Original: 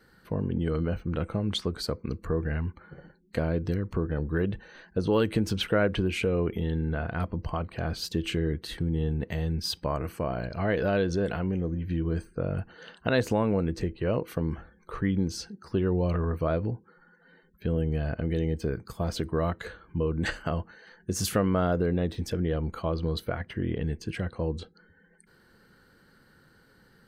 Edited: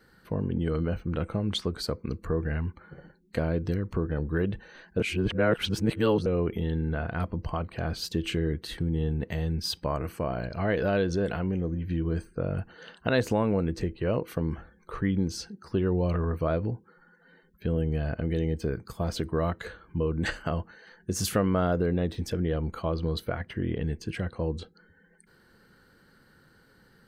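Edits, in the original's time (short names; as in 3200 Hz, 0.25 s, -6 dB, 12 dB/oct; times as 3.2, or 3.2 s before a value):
5–6.26 reverse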